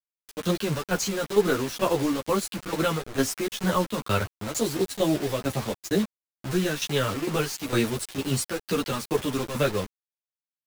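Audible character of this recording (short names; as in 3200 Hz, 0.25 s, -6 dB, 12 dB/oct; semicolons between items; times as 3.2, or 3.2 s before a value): tremolo saw down 2.2 Hz, depth 75%; a quantiser's noise floor 6-bit, dither none; a shimmering, thickened sound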